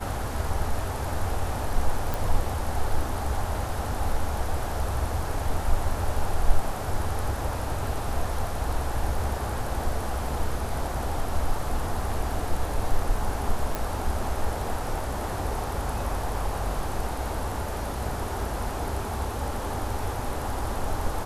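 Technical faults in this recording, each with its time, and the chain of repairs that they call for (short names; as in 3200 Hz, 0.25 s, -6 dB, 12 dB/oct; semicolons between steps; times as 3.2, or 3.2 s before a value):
2.14 pop
13.75 pop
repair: de-click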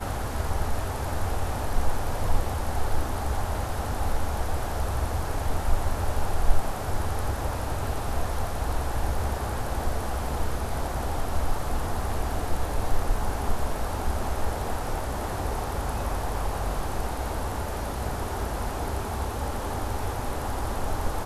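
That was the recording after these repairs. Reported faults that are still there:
none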